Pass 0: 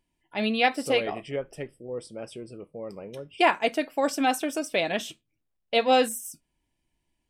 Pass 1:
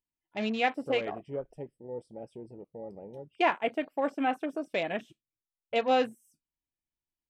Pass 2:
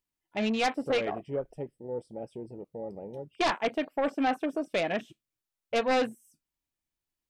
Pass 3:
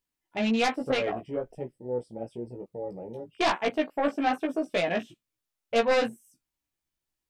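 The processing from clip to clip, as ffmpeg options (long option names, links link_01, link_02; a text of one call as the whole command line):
ffmpeg -i in.wav -filter_complex "[0:a]acrossover=split=3300[link_01][link_02];[link_02]acompressor=threshold=-42dB:ratio=4:attack=1:release=60[link_03];[link_01][link_03]amix=inputs=2:normalize=0,afwtdn=0.0141,volume=-4.5dB" out.wav
ffmpeg -i in.wav -af "aeval=exprs='0.237*sin(PI/2*2.82*val(0)/0.237)':channel_layout=same,volume=-9dB" out.wav
ffmpeg -i in.wav -af "flanger=delay=15.5:depth=2:speed=1.1,volume=5dB" out.wav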